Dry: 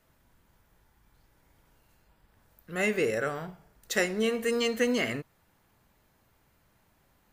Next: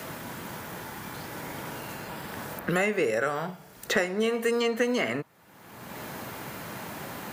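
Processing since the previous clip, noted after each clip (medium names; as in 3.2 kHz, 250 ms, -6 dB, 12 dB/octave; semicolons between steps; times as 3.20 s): high-pass 99 Hz; dynamic bell 930 Hz, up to +6 dB, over -44 dBFS, Q 0.82; three bands compressed up and down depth 100%; trim +1 dB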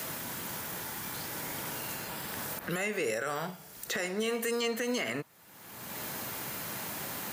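treble shelf 3.2 kHz +11.5 dB; peak limiter -18.5 dBFS, peak gain reduction 10.5 dB; trim -4 dB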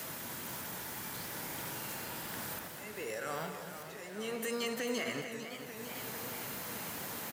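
slow attack 650 ms; loudspeakers at several distances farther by 63 m -11 dB, 80 m -11 dB; modulated delay 448 ms, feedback 75%, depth 116 cents, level -10 dB; trim -4.5 dB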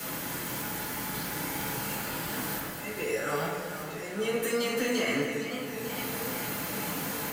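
reverberation RT60 0.60 s, pre-delay 5 ms, DRR -5 dB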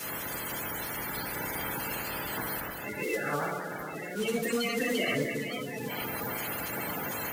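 coarse spectral quantiser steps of 30 dB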